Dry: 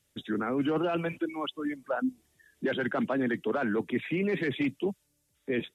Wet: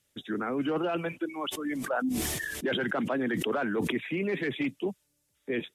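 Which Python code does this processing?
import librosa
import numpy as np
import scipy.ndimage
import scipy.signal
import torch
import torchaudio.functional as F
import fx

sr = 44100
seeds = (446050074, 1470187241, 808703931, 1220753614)

y = fx.low_shelf(x, sr, hz=200.0, db=-5.0)
y = fx.sustainer(y, sr, db_per_s=21.0, at=(1.45, 3.94), fade=0.02)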